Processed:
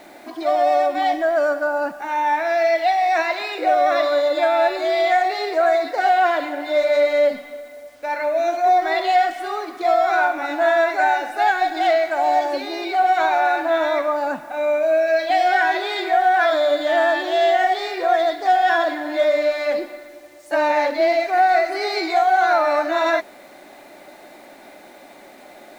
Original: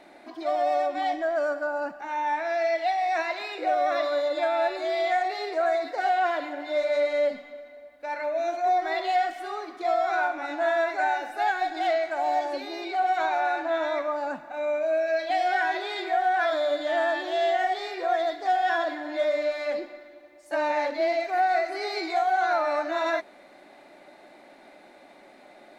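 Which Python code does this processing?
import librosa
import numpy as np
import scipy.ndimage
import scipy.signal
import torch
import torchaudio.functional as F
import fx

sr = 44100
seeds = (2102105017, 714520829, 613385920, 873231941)

y = fx.quant_dither(x, sr, seeds[0], bits=10, dither='none')
y = y * 10.0 ** (7.5 / 20.0)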